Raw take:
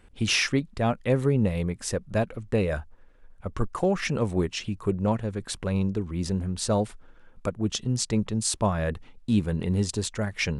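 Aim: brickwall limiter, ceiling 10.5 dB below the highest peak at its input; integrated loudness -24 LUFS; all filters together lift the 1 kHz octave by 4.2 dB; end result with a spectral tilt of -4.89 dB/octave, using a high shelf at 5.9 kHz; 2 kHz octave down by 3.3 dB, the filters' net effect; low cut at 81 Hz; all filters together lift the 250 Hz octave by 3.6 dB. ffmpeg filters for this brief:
-af "highpass=81,equalizer=f=250:t=o:g=4.5,equalizer=f=1000:t=o:g=6.5,equalizer=f=2000:t=o:g=-7,highshelf=f=5900:g=7.5,volume=1.58,alimiter=limit=0.237:level=0:latency=1"

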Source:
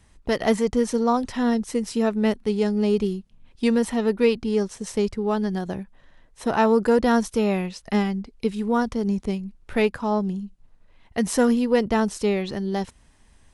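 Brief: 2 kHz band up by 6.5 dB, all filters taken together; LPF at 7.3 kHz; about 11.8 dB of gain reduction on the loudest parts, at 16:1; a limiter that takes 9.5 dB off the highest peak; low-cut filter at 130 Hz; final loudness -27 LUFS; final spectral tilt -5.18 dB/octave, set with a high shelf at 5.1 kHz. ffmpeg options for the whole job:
-af "highpass=130,lowpass=7300,equalizer=f=2000:t=o:g=9,highshelf=f=5100:g=-8,acompressor=threshold=0.0562:ratio=16,volume=2.24,alimiter=limit=0.133:level=0:latency=1"

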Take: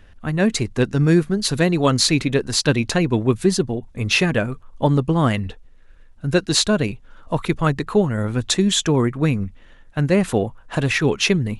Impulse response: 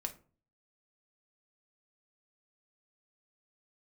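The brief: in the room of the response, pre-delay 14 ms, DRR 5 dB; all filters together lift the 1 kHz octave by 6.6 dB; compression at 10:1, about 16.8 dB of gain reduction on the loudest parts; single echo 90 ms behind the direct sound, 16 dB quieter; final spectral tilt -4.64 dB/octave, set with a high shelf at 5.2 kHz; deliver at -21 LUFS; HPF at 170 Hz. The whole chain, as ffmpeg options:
-filter_complex "[0:a]highpass=170,equalizer=f=1000:t=o:g=8.5,highshelf=f=5200:g=-6.5,acompressor=threshold=0.0447:ratio=10,aecho=1:1:90:0.158,asplit=2[s0][s1];[1:a]atrim=start_sample=2205,adelay=14[s2];[s1][s2]afir=irnorm=-1:irlink=0,volume=0.596[s3];[s0][s3]amix=inputs=2:normalize=0,volume=2.99"

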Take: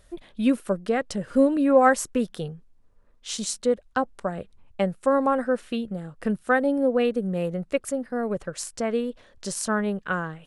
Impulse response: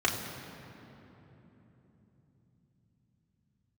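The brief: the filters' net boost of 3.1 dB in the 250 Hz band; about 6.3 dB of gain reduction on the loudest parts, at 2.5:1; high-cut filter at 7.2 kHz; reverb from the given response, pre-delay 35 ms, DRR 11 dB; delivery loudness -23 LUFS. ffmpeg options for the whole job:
-filter_complex "[0:a]lowpass=7200,equalizer=f=250:t=o:g=3.5,acompressor=threshold=0.0891:ratio=2.5,asplit=2[s0][s1];[1:a]atrim=start_sample=2205,adelay=35[s2];[s1][s2]afir=irnorm=-1:irlink=0,volume=0.075[s3];[s0][s3]amix=inputs=2:normalize=0,volume=1.5"

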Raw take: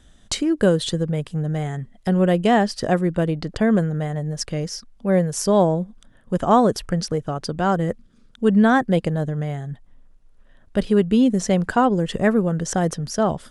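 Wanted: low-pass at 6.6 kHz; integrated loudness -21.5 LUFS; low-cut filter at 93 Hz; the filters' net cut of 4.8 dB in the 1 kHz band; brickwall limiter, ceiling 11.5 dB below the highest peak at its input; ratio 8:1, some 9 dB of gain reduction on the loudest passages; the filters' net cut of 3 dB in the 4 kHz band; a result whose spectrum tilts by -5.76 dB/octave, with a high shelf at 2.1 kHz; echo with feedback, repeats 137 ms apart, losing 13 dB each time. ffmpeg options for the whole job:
-af "highpass=93,lowpass=6600,equalizer=f=1000:t=o:g=-7.5,highshelf=f=2100:g=3,equalizer=f=4000:t=o:g=-6,acompressor=threshold=0.0794:ratio=8,alimiter=limit=0.0631:level=0:latency=1,aecho=1:1:137|274|411:0.224|0.0493|0.0108,volume=3.35"

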